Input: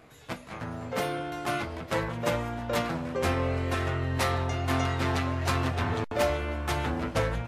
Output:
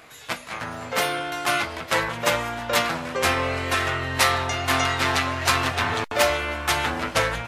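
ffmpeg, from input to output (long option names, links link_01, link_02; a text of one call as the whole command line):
ffmpeg -i in.wav -af "tiltshelf=frequency=650:gain=-7.5,volume=5dB" out.wav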